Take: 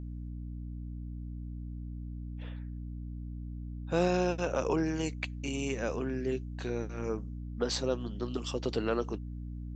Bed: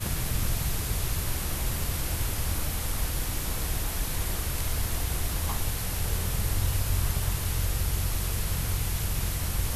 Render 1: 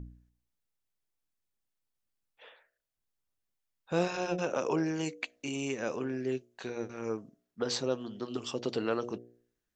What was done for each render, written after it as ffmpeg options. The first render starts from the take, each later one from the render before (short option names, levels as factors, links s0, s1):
-af "bandreject=f=60:t=h:w=4,bandreject=f=120:t=h:w=4,bandreject=f=180:t=h:w=4,bandreject=f=240:t=h:w=4,bandreject=f=300:t=h:w=4,bandreject=f=360:t=h:w=4,bandreject=f=420:t=h:w=4,bandreject=f=480:t=h:w=4,bandreject=f=540:t=h:w=4,bandreject=f=600:t=h:w=4,bandreject=f=660:t=h:w=4,bandreject=f=720:t=h:w=4"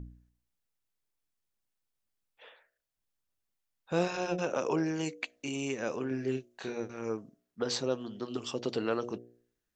-filter_complex "[0:a]asettb=1/sr,asplit=3[s0][s1][s2];[s0]atrim=end=6.084[s3];[s1]atrim=start=6.08:end=6.8,asetpts=PTS-STARTPTS,afade=t=in:d=0.004:c=qsin,afade=t=out:st=0.716:d=0.004:c=qsin,asplit=2[s4][s5];[s5]adelay=30,volume=0.562[s6];[s4][s6]amix=inputs=2:normalize=0,atrim=end_sample=31752[s7];[s2]atrim=start=6.796[s8];[s3][s7]acrossfade=d=0.004:c1=hsin:c2=qsin[s9];[s9][s8]acrossfade=d=0.004:c1=qsin:c2=hsin"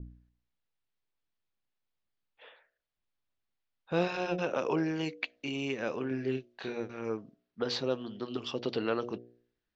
-af "lowpass=f=4500:w=0.5412,lowpass=f=4500:w=1.3066,adynamicequalizer=threshold=0.00398:dfrequency=1900:dqfactor=0.7:tfrequency=1900:tqfactor=0.7:attack=5:release=100:ratio=0.375:range=1.5:mode=boostabove:tftype=highshelf"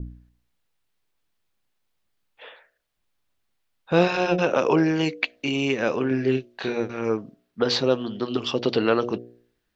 -af "volume=3.35"